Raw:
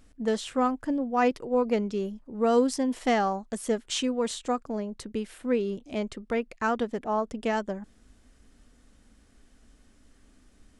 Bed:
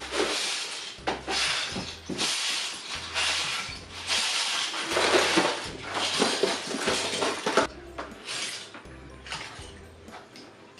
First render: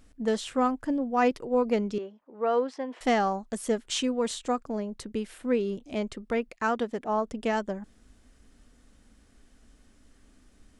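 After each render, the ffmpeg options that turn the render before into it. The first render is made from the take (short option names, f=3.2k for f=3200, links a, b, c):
-filter_complex "[0:a]asettb=1/sr,asplit=3[a][b][c];[a]atrim=end=1.984[d];[b]atrim=start=1.98:end=3.01,asetpts=PTS-STARTPTS,afade=t=in:d=0.004:c=qsin,afade=t=out:st=1.026:d=0.004:c=qsin,highpass=470,lowpass=2.4k[e];[c]atrim=start=3.006[f];[d][e]acrossfade=d=0.004:c1=hsin:c2=qsin[g];[g][f]acrossfade=d=0.004:c1=qsin:c2=hsin,asettb=1/sr,asplit=3[h][i][j];[h]atrim=end=6.494[k];[i]atrim=start=6.49:end=7.09,asetpts=PTS-STARTPTS,afade=t=in:d=0.004:c=qsin,afade=t=out:st=0.596:d=0.004:c=qsin,lowshelf=f=92:g=-11[l];[j]atrim=start=7.086[m];[k][l]acrossfade=d=0.004:c1=hsin:c2=qsin[n];[n][m]acrossfade=d=0.004:c1=qsin:c2=hsin"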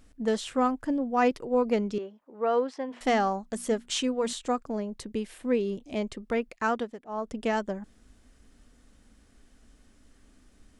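-filter_complex "[0:a]asettb=1/sr,asplit=3[a][b][c];[a]atrim=end=2.894[d];[b]atrim=start=2.89:end=4.33,asetpts=PTS-STARTPTS,afade=t=in:d=0.004:c=qsin,afade=t=out:st=1.436:d=0.004:c=qsin,bandreject=f=60:t=h:w=6,bandreject=f=120:t=h:w=6,bandreject=f=180:t=h:w=6,bandreject=f=240:t=h:w=6[e];[c]atrim=start=4.326[f];[d][e]acrossfade=d=0.004:c1=hsin:c2=qsin[g];[g][f]acrossfade=d=0.004:c1=qsin:c2=hsin,asettb=1/sr,asplit=3[h][i][j];[h]atrim=end=4.974[k];[i]atrim=start=4.97:end=6.22,asetpts=PTS-STARTPTS,afade=t=in:d=0.004:c=qsin,afade=t=out:st=1.246:d=0.004:c=qsin,equalizer=f=1.4k:w=7.8:g=-7.5[l];[j]atrim=start=6.216[m];[k][l]acrossfade=d=0.004:c1=hsin:c2=qsin[n];[n][m]acrossfade=d=0.004:c1=qsin:c2=hsin,asplit=3[o][p][q];[o]atrim=end=7,asetpts=PTS-STARTPTS,afade=t=out:st=6.73:d=0.27:silence=0.211349[r];[p]atrim=start=7:end=7.07,asetpts=PTS-STARTPTS,volume=-13.5dB[s];[q]atrim=start=7.07,asetpts=PTS-STARTPTS,afade=t=in:d=0.27:silence=0.211349[t];[r][s][t]concat=n=3:v=0:a=1"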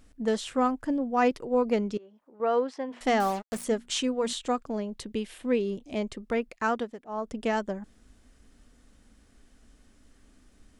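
-filter_complex "[0:a]asettb=1/sr,asplit=3[a][b][c];[a]atrim=end=1.974[d];[b]atrim=start=1.97:end=2.4,asetpts=PTS-STARTPTS,afade=t=in:d=0.004:c=qsin,afade=t=out:st=0.426:d=0.004:c=qsin,acompressor=threshold=-53dB:ratio=2.5:attack=3.2:release=140:knee=1:detection=peak[e];[c]atrim=start=2.396[f];[d][e]acrossfade=d=0.004:c1=hsin:c2=qsin[g];[g][f]acrossfade=d=0.004:c1=qsin:c2=hsin,asettb=1/sr,asplit=3[h][i][j];[h]atrim=end=3.204[k];[i]atrim=start=3.2:end=3.64,asetpts=PTS-STARTPTS,afade=t=in:d=0.004:c=qsin,afade=t=out:st=0.436:d=0.004:c=qsin,acrusher=bits=5:mix=0:aa=0.5[l];[j]atrim=start=3.636[m];[k][l]acrossfade=d=0.004:c1=hsin:c2=qsin[n];[n][m]acrossfade=d=0.004:c1=qsin:c2=hsin,asettb=1/sr,asplit=3[o][p][q];[o]atrim=end=4.294[r];[p]atrim=start=4.29:end=5.59,asetpts=PTS-STARTPTS,afade=t=in:d=0.004:c=qsin,afade=t=out:st=1.296:d=0.004:c=qsin,equalizer=f=3.2k:t=o:w=0.77:g=5[s];[q]atrim=start=5.586[t];[r][s]acrossfade=d=0.004:c1=hsin:c2=qsin[u];[u][t]acrossfade=d=0.004:c1=qsin:c2=hsin"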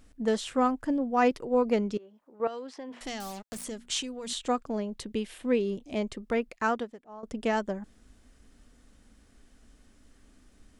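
-filter_complex "[0:a]asettb=1/sr,asplit=3[a][b][c];[a]atrim=end=2.474[d];[b]atrim=start=2.47:end=4.39,asetpts=PTS-STARTPTS,afade=t=in:d=0.004:c=qsin,afade=t=out:st=1.916:d=0.004:c=qsin,acrossover=split=140|3000[e][f][g];[f]acompressor=threshold=-37dB:ratio=6:attack=3.2:release=140:knee=2.83:detection=peak[h];[e][h][g]amix=inputs=3:normalize=0[i];[c]atrim=start=4.386[j];[d][i]acrossfade=d=0.004:c1=hsin:c2=qsin[k];[k][j]acrossfade=d=0.004:c1=qsin:c2=hsin,asplit=2[l][m];[l]atrim=end=7.23,asetpts=PTS-STARTPTS,afade=t=out:st=6.67:d=0.56:silence=0.16788[n];[m]atrim=start=7.23,asetpts=PTS-STARTPTS,afade=t=in:d=0.004:c=hsin:silence=0.16788[o];[n][o]concat=n=2:v=0:a=1"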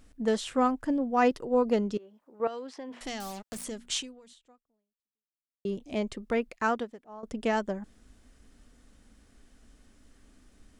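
-filter_complex "[0:a]asettb=1/sr,asplit=3[a][b][c];[a]atrim=end=1.264[d];[b]atrim=start=1.26:end=1.95,asetpts=PTS-STARTPTS,afade=t=in:d=0.004:c=qsin,afade=t=out:st=0.686:d=0.004:c=qsin,bandreject=f=2.3k:w=6.3[e];[c]atrim=start=1.946[f];[d][e]acrossfade=d=0.004:c1=hsin:c2=qsin[g];[g][f]acrossfade=d=0.004:c1=qsin:c2=hsin,asplit=2[h][i];[h]atrim=end=5.65,asetpts=PTS-STARTPTS,afade=t=out:st=3.96:d=1.69:c=exp[j];[i]atrim=start=5.65,asetpts=PTS-STARTPTS,afade=t=in:d=0.004:c=hsin[k];[j][k]concat=n=2:v=0:a=1"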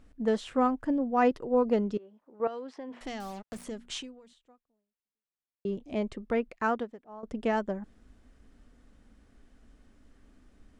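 -af "highshelf=f=3.7k:g=-12"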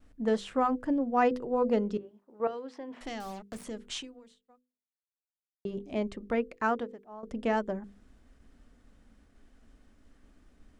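-af "agate=range=-33dB:threshold=-57dB:ratio=3:detection=peak,bandreject=f=50:t=h:w=6,bandreject=f=100:t=h:w=6,bandreject=f=150:t=h:w=6,bandreject=f=200:t=h:w=6,bandreject=f=250:t=h:w=6,bandreject=f=300:t=h:w=6,bandreject=f=350:t=h:w=6,bandreject=f=400:t=h:w=6,bandreject=f=450:t=h:w=6,bandreject=f=500:t=h:w=6"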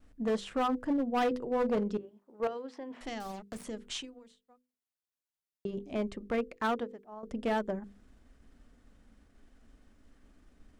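-af "tremolo=f=23:d=0.182,asoftclip=type=hard:threshold=-25dB"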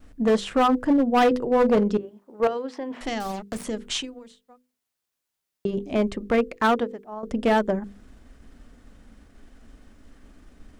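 -af "volume=10.5dB"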